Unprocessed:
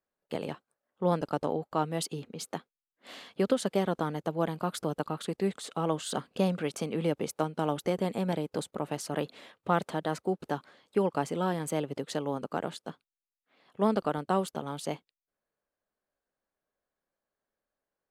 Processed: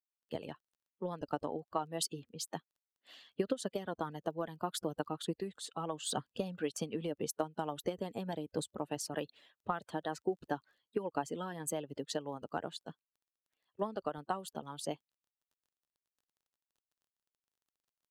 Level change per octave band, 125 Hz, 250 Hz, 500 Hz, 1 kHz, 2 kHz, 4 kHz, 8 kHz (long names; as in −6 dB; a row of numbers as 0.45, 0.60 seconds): −10.5, −9.0, −7.5, −7.0, −7.0, −3.0, −1.0 decibels